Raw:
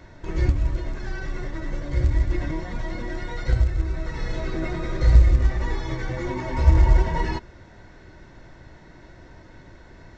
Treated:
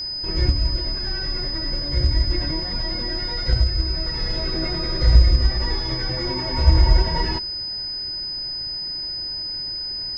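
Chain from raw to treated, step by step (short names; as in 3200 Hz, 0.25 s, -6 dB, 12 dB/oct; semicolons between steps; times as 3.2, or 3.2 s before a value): whine 5000 Hz -27 dBFS; gain +1 dB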